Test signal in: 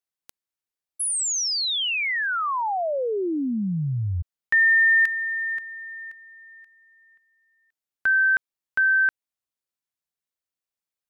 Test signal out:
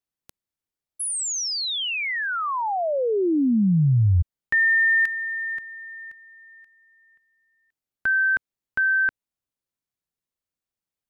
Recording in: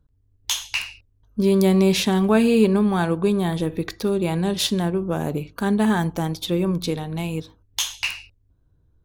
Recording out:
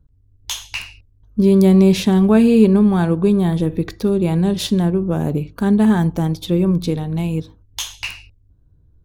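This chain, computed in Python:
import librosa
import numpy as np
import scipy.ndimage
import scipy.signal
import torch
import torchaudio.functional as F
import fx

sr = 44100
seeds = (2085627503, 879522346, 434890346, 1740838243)

y = fx.low_shelf(x, sr, hz=420.0, db=10.5)
y = y * 10.0 ** (-2.0 / 20.0)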